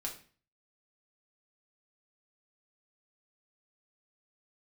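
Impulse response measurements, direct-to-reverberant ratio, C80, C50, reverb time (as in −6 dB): −0.5 dB, 14.0 dB, 9.5 dB, 0.40 s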